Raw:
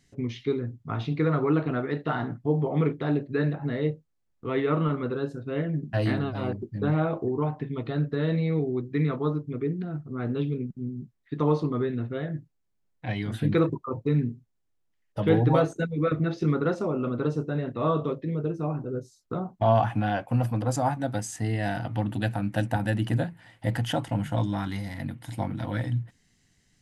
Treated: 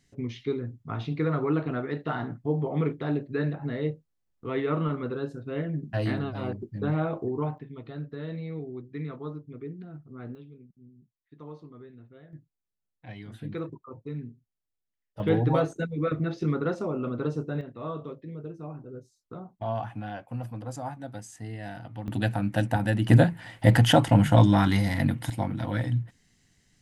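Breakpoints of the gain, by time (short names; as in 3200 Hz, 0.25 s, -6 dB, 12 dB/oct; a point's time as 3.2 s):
-2.5 dB
from 7.58 s -10 dB
from 10.35 s -20 dB
from 12.33 s -12 dB
from 15.2 s -2.5 dB
from 17.61 s -10 dB
from 22.08 s +1 dB
from 23.09 s +9 dB
from 25.3 s +1 dB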